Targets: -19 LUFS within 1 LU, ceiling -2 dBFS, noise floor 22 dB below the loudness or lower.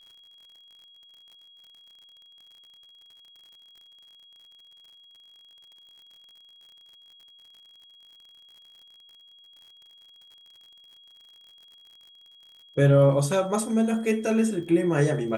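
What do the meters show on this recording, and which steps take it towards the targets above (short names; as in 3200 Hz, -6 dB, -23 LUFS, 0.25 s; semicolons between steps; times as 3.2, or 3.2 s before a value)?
ticks 58/s; steady tone 3300 Hz; tone level -51 dBFS; loudness -23.0 LUFS; peak -8.5 dBFS; loudness target -19.0 LUFS
-> de-click; notch 3300 Hz, Q 30; gain +4 dB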